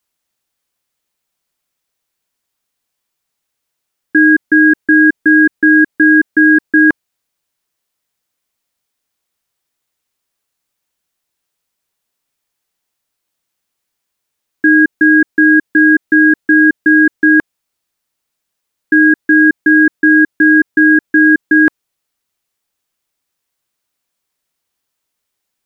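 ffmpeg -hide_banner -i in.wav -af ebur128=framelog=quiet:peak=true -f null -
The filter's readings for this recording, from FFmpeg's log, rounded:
Integrated loudness:
  I:          -9.3 LUFS
  Threshold: -19.4 LUFS
Loudness range:
  LRA:         8.0 LU
  Threshold: -31.6 LUFS
  LRA low:   -17.3 LUFS
  LRA high:   -9.2 LUFS
True peak:
  Peak:       -1.1 dBFS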